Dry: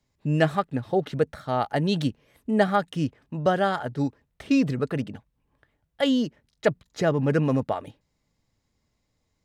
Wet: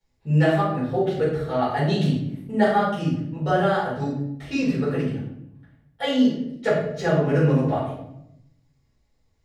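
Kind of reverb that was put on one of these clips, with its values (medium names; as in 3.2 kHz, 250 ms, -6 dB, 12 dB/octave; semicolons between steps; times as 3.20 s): simulated room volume 190 m³, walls mixed, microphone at 4.6 m; trim -11.5 dB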